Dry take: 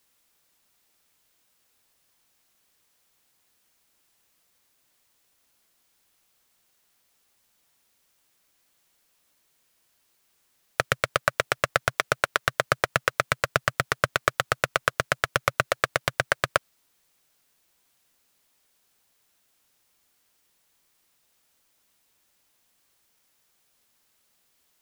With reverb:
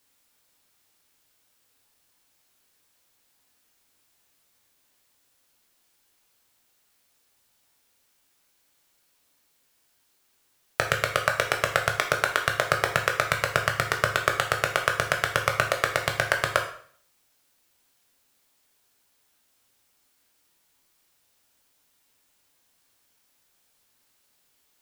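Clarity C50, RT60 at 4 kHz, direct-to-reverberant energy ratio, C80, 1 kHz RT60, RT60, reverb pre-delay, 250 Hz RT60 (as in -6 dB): 8.5 dB, 0.50 s, 3.0 dB, 12.5 dB, 0.50 s, 0.50 s, 5 ms, 0.55 s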